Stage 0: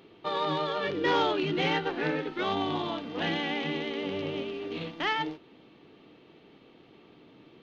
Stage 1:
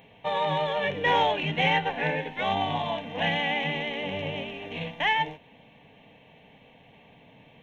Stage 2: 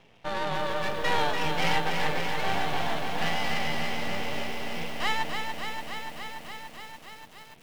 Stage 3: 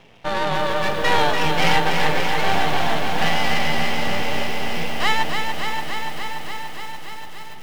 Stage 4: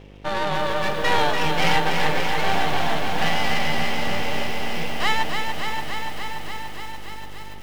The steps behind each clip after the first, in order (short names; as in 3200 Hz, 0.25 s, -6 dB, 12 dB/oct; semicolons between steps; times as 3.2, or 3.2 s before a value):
fixed phaser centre 1300 Hz, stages 6; gain +7 dB
half-wave rectifier; lo-fi delay 0.289 s, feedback 80%, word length 8-bit, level -5.5 dB
diffused feedback echo 0.611 s, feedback 47%, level -13 dB; gain +8 dB
buzz 50 Hz, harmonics 11, -43 dBFS -4 dB/oct; gain -2 dB